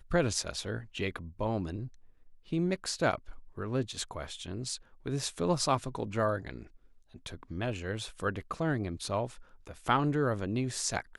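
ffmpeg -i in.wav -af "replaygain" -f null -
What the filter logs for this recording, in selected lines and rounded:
track_gain = +13.6 dB
track_peak = 0.171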